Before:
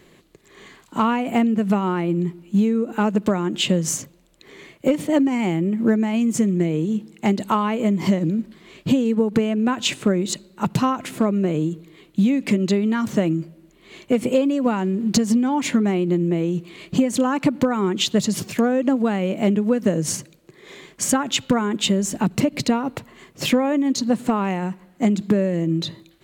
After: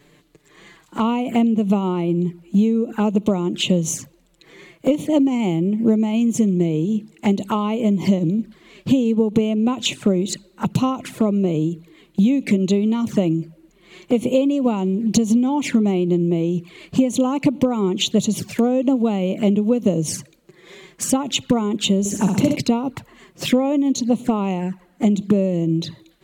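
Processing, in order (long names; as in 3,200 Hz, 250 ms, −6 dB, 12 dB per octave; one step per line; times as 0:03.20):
flanger swept by the level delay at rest 7.4 ms, full sweep at −18.5 dBFS
0:21.99–0:22.56: flutter between parallel walls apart 11.1 metres, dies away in 0.84 s
level +2 dB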